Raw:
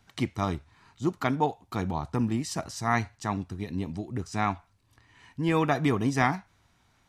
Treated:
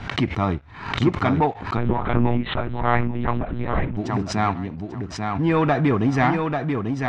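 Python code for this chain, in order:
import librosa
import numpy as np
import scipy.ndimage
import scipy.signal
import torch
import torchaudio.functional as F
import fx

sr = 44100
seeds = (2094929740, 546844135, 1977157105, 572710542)

y = fx.leveller(x, sr, passes=2)
y = fx.echo_feedback(y, sr, ms=841, feedback_pct=16, wet_db=-5.0)
y = fx.lpc_monotone(y, sr, seeds[0], pitch_hz=120.0, order=10, at=(1.77, 3.97))
y = scipy.signal.sosfilt(scipy.signal.butter(2, 2700.0, 'lowpass', fs=sr, output='sos'), y)
y = fx.pre_swell(y, sr, db_per_s=83.0)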